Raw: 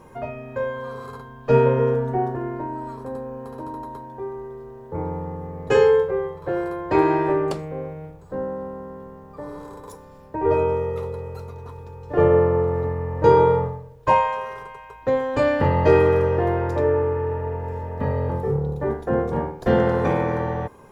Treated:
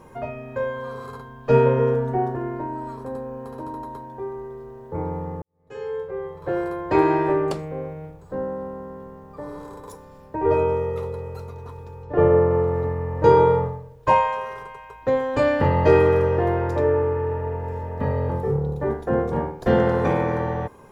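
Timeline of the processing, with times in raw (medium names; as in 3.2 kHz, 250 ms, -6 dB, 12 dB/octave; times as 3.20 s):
5.42–6.50 s: fade in quadratic
12.03–12.51 s: low-pass 2.2 kHz 6 dB/octave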